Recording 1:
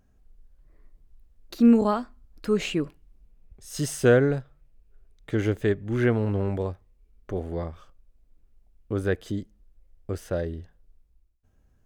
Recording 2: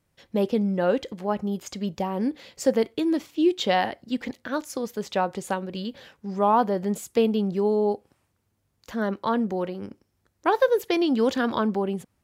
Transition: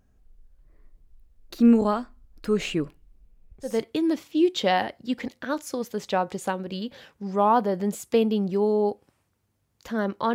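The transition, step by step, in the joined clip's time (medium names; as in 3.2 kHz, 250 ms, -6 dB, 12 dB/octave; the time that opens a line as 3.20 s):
recording 1
3.72 s: go over to recording 2 from 2.75 s, crossfade 0.24 s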